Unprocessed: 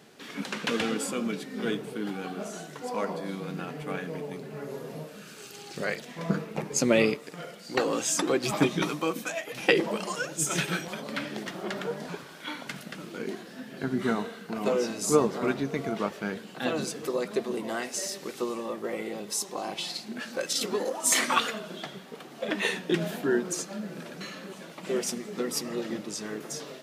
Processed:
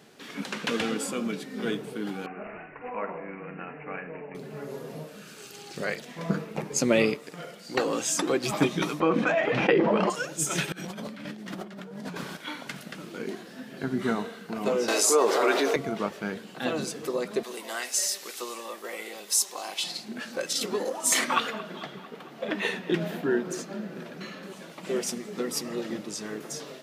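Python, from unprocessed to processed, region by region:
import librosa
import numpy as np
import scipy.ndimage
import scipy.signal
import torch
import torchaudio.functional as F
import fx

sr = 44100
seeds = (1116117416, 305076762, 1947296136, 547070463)

y = fx.chain(x, sr, fx.low_shelf(hz=360.0, db=-9.5),
    fx.room_flutter(wall_m=8.4, rt60_s=0.23),
    fx.resample_bad(factor=8, down='none', up='filtered'), at=(2.26, 4.35))
y = fx.chain(y, sr, fx.lowpass(hz=1900.0, slope=12),
    fx.env_flatten(amount_pct=70), at=(9.0, 10.1))
y = fx.chain(y, sr, fx.peak_eq(hz=200.0, db=12.5, octaves=0.37),
    fx.over_compress(threshold_db=-39.0, ratio=-1.0), at=(10.72, 12.37))
y = fx.chain(y, sr, fx.highpass(hz=390.0, slope=24),
    fx.env_flatten(amount_pct=70), at=(14.88, 15.76))
y = fx.chain(y, sr, fx.highpass(hz=510.0, slope=6),
    fx.tilt_eq(slope=2.5), at=(17.43, 19.84))
y = fx.chain(y, sr, fx.peak_eq(hz=8900.0, db=-8.0, octaves=1.6),
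    fx.echo_wet_lowpass(ms=224, feedback_pct=65, hz=2800.0, wet_db=-16), at=(21.24, 24.43))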